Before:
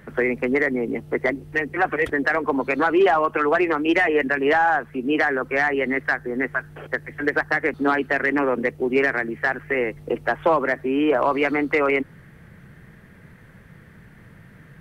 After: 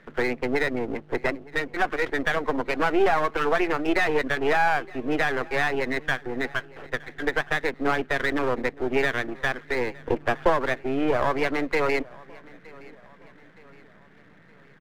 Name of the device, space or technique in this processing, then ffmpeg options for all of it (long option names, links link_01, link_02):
crystal radio: -filter_complex "[0:a]asettb=1/sr,asplit=3[link_01][link_02][link_03];[link_01]atrim=end=9.954[link_04];[link_02]atrim=start=9.95:end=10.5,asetpts=PTS-STARTPTS,afade=type=in:duration=0.004:curve=qsin,afade=type=out:start_time=0.546:duration=0.004:curve=qsin,lowshelf=frequency=460:gain=6[link_05];[link_03]atrim=start=10.496[link_06];[link_04][link_05]acrossfade=duration=0.004:curve1=hsin:curve2=qsin[link_07];[link_07][link_06]acrossfade=duration=0.004:curve1=qsin:curve2=hsin,highpass=220,lowpass=2900,aeval=exprs='if(lt(val(0),0),0.251*val(0),val(0))':channel_layout=same,aecho=1:1:917|1834|2751:0.0708|0.0333|0.0156"